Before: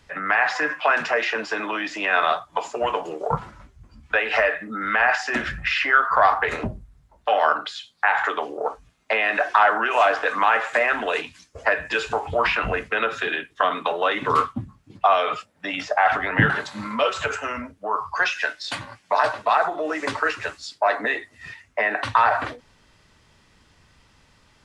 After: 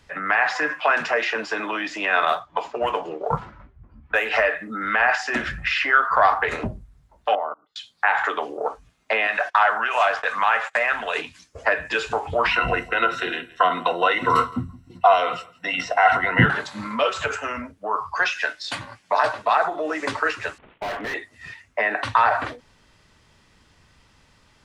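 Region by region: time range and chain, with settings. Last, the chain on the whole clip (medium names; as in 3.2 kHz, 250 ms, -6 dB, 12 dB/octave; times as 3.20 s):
2.25–4.29 s: median filter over 5 samples + level-controlled noise filter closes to 1.4 kHz, open at -17.5 dBFS
7.35–7.76 s: level held to a coarse grid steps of 24 dB + Savitzky-Golay filter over 65 samples + upward expansion, over -40 dBFS
9.27–11.16 s: gate -31 dBFS, range -24 dB + peaking EQ 320 Hz -13.5 dB 0.99 oct
12.51–16.46 s: rippled EQ curve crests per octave 2, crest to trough 14 dB + delay 168 ms -21 dB
20.58–21.14 s: CVSD coder 16 kbps + hard clipper -26 dBFS
whole clip: none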